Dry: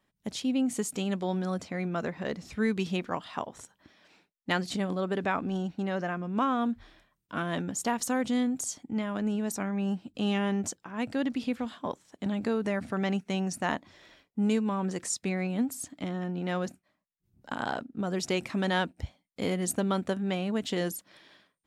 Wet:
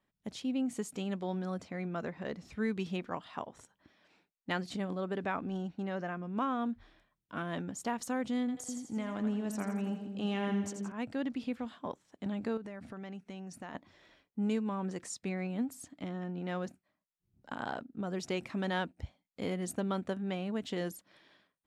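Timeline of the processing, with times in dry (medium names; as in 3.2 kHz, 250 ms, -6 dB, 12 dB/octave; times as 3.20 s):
8.40–10.92 s: two-band feedback delay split 500 Hz, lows 284 ms, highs 84 ms, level -7 dB
12.57–13.75 s: compression 4:1, threshold -36 dBFS
whole clip: treble shelf 4.5 kHz -6.5 dB; trim -5.5 dB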